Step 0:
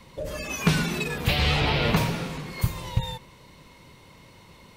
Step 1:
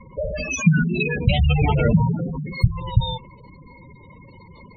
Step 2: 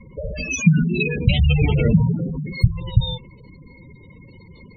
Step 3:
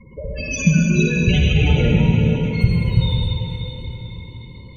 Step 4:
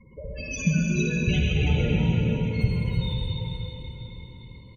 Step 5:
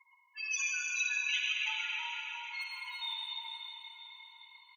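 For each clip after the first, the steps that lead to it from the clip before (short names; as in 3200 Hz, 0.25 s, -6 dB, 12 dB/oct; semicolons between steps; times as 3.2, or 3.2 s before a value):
spectral gate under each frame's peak -10 dB strong; gain +8 dB
band shelf 1000 Hz -11.5 dB; gain +1.5 dB
reverb RT60 4.0 s, pre-delay 42 ms, DRR -2.5 dB; gain -1.5 dB
echo 0.327 s -8 dB; gain -8 dB
brick-wall FIR high-pass 860 Hz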